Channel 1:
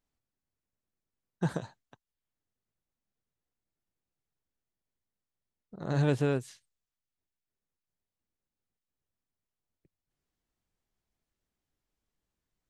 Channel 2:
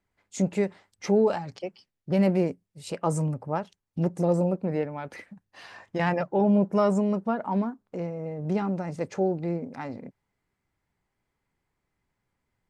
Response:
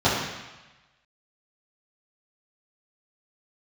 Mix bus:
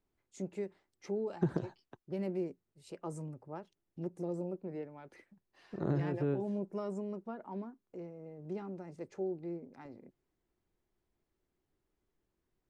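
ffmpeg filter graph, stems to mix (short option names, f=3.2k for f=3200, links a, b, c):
-filter_complex "[0:a]acrossover=split=2700[a][b];[b]acompressor=threshold=-59dB:ratio=4:attack=1:release=60[c];[a][c]amix=inputs=2:normalize=0,highshelf=f=2.8k:g=-10.5,acompressor=threshold=-30dB:ratio=6,volume=2.5dB[d];[1:a]volume=-17dB,asplit=2[e][f];[f]apad=whole_len=559650[g];[d][g]sidechaincompress=threshold=-44dB:ratio=8:attack=16:release=118[h];[h][e]amix=inputs=2:normalize=0,equalizer=f=360:w=3.1:g=9.5,acrossover=split=340|3000[i][j][k];[j]acompressor=threshold=-37dB:ratio=6[l];[i][l][k]amix=inputs=3:normalize=0"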